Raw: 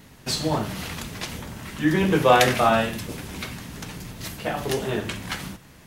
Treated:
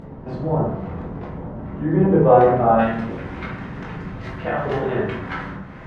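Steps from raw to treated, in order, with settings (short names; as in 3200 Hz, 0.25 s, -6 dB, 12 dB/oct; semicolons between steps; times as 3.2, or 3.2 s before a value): Chebyshev low-pass 710 Hz, order 2, from 2.78 s 1700 Hz; upward compressor, threshold -31 dBFS; reverb RT60 0.70 s, pre-delay 12 ms, DRR -3.5 dB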